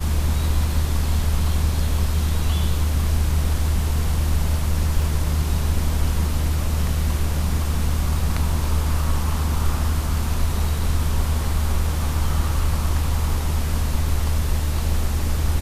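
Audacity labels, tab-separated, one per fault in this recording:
5.020000	5.020000	gap 2.1 ms

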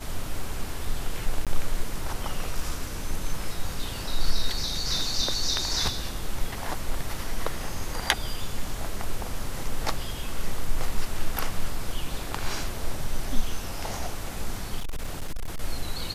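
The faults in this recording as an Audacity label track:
1.450000	1.470000	gap 17 ms
14.800000	15.600000	clipped -25.5 dBFS

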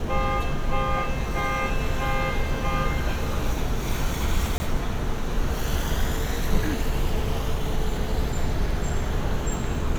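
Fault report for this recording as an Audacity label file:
4.580000	4.600000	gap 20 ms

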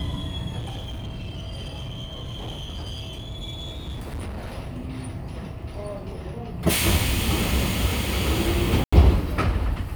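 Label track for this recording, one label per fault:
0.580000	4.580000	clipped -29 dBFS
8.840000	8.930000	gap 85 ms

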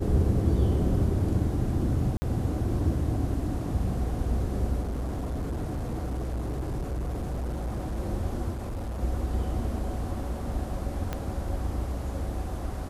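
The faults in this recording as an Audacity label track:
2.170000	2.220000	gap 50 ms
4.810000	7.980000	clipped -27.5 dBFS
8.500000	9.020000	clipped -30 dBFS
11.130000	11.130000	pop -17 dBFS

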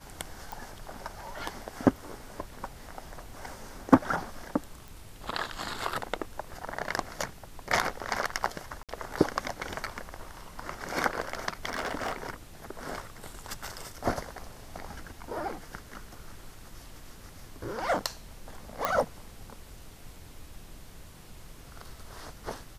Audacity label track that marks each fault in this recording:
0.520000	0.520000	pop
4.880000	4.880000	pop
8.830000	8.890000	gap 57 ms
11.730000	12.260000	clipped -27 dBFS
18.850000	18.850000	pop -12 dBFS

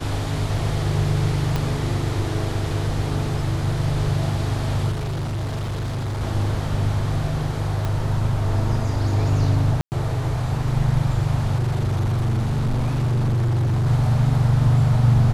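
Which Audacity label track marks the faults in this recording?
1.560000	1.560000	pop -10 dBFS
4.910000	6.220000	clipped -23 dBFS
7.850000	7.850000	pop -13 dBFS
9.810000	9.920000	gap 0.109 s
11.560000	13.870000	clipped -17.5 dBFS

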